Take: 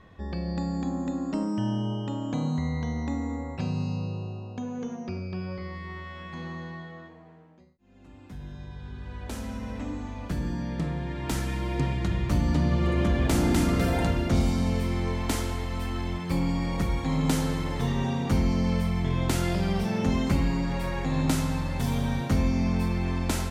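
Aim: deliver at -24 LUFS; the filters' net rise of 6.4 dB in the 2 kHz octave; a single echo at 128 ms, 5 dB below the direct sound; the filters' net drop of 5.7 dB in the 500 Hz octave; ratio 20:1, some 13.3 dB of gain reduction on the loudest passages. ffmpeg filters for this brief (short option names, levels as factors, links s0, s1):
-af "equalizer=f=500:t=o:g=-8.5,equalizer=f=2000:t=o:g=8,acompressor=threshold=0.0224:ratio=20,aecho=1:1:128:0.562,volume=4.47"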